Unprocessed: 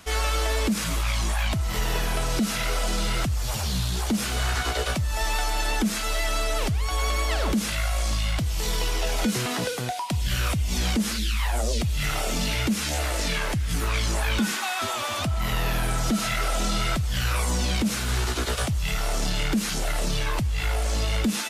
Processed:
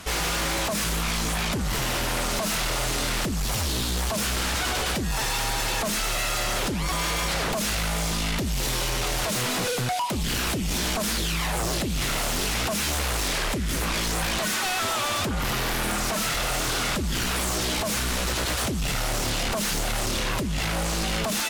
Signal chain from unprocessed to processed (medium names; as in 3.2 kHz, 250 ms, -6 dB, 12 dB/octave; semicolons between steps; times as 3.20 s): sine folder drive 12 dB, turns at -14.5 dBFS; trim -8.5 dB